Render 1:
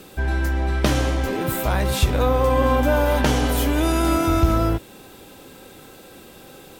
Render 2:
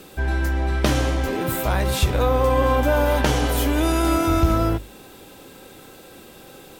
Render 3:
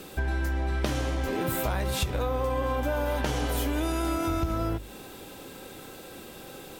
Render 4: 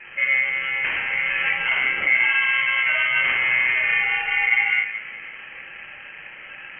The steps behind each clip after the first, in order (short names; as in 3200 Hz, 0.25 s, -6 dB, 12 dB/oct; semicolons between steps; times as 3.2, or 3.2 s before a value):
notches 50/100/150/200/250 Hz
compressor, threshold -25 dBFS, peak gain reduction 12.5 dB
reverb RT60 0.70 s, pre-delay 3 ms, DRR -9 dB; ring modulator 970 Hz; inverted band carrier 3100 Hz; gain -4.5 dB